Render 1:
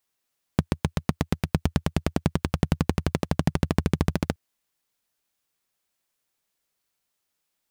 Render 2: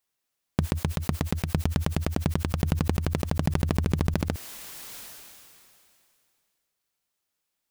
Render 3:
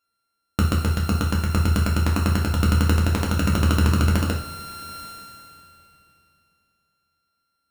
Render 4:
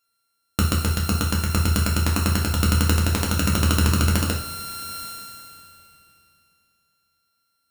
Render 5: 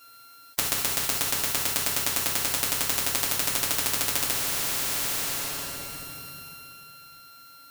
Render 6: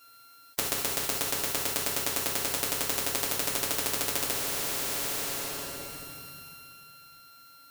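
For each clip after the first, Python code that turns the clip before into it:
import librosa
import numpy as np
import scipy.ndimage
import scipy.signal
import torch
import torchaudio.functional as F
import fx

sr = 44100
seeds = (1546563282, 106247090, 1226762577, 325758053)

y1 = fx.sustainer(x, sr, db_per_s=23.0)
y1 = y1 * 10.0 ** (-2.5 / 20.0)
y2 = np.r_[np.sort(y1[:len(y1) // 32 * 32].reshape(-1, 32), axis=1).ravel(), y1[len(y1) // 32 * 32:]]
y2 = fx.rev_double_slope(y2, sr, seeds[0], early_s=0.46, late_s=3.6, knee_db=-22, drr_db=-1.5)
y3 = fx.high_shelf(y2, sr, hz=3200.0, db=9.5)
y3 = y3 * 10.0 ** (-1.0 / 20.0)
y4 = y3 + 0.96 * np.pad(y3, (int(7.2 * sr / 1000.0), 0))[:len(y3)]
y4 = fx.spectral_comp(y4, sr, ratio=10.0)
y5 = fx.dynamic_eq(y4, sr, hz=440.0, q=1.0, threshold_db=-52.0, ratio=4.0, max_db=7)
y5 = y5 * 10.0 ** (-4.0 / 20.0)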